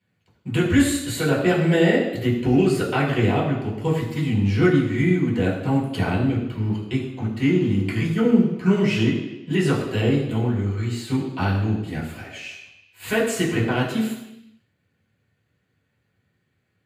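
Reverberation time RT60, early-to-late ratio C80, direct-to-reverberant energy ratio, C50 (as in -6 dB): 0.90 s, 6.5 dB, -6.5 dB, 5.0 dB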